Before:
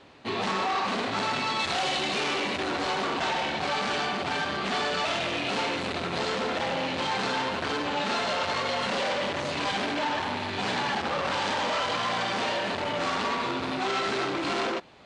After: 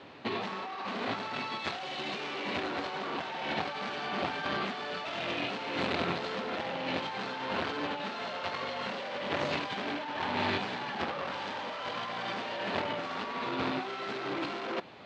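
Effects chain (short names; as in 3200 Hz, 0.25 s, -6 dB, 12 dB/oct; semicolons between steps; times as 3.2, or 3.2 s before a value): negative-ratio compressor -32 dBFS, ratio -0.5; BPF 100–4400 Hz; gain -1.5 dB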